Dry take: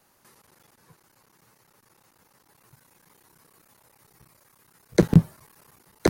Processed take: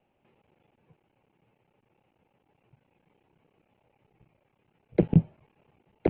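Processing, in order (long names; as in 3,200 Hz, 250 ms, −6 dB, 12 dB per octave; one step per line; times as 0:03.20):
Butterworth low-pass 2,900 Hz 48 dB per octave
flat-topped bell 1,400 Hz −12 dB 1.2 octaves
level −4.5 dB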